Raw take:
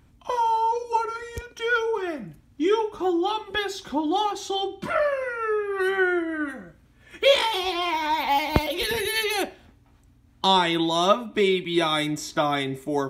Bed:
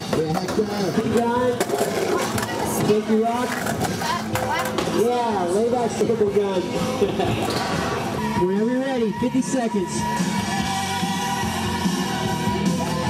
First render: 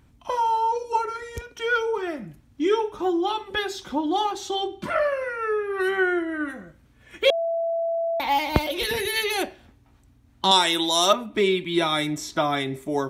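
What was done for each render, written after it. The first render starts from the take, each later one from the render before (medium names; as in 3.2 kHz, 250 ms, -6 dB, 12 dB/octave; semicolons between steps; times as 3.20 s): 7.30–8.20 s: bleep 667 Hz -22 dBFS; 10.51–11.13 s: tone controls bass -11 dB, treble +14 dB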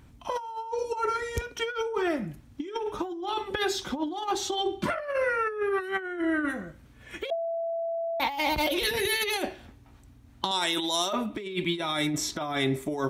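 peak limiter -15.5 dBFS, peak gain reduction 12 dB; compressor with a negative ratio -28 dBFS, ratio -0.5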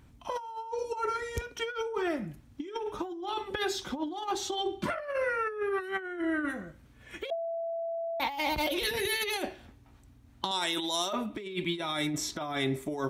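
trim -3.5 dB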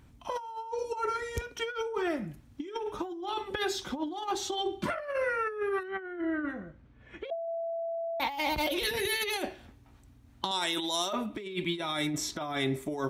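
5.83–7.48 s: tape spacing loss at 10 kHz 25 dB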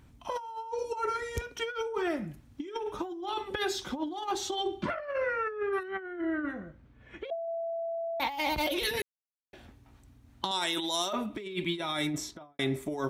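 4.82–5.73 s: distance through air 120 m; 9.02–9.53 s: mute; 12.09–12.59 s: studio fade out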